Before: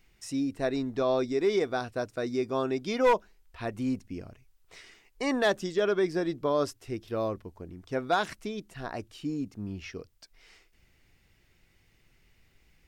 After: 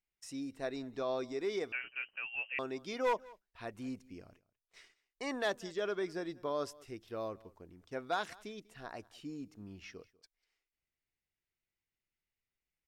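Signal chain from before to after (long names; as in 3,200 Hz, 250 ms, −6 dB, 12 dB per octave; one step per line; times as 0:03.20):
noise gate −51 dBFS, range −19 dB
low-shelf EQ 320 Hz −7 dB
single-tap delay 194 ms −23 dB
0:01.72–0:02.59: voice inversion scrambler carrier 3,000 Hz
level −7.5 dB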